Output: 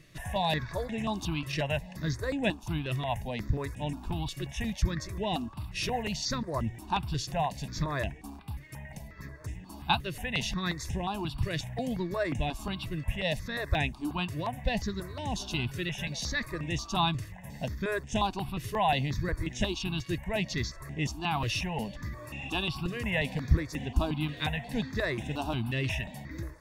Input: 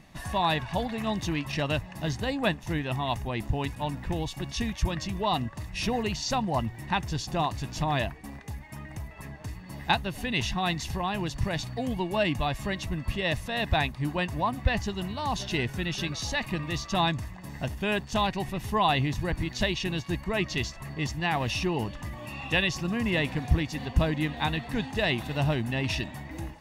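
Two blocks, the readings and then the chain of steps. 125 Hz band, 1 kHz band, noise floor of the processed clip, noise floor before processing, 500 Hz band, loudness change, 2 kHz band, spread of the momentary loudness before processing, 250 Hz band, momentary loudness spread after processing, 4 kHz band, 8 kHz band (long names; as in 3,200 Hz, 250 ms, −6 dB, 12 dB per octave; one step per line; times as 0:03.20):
−2.5 dB, −3.5 dB, −47 dBFS, −44 dBFS, −3.0 dB, −3.0 dB, −3.5 dB, 8 LU, −3.0 dB, 8 LU, −3.0 dB, −2.0 dB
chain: step-sequenced phaser 5.6 Hz 220–4,400 Hz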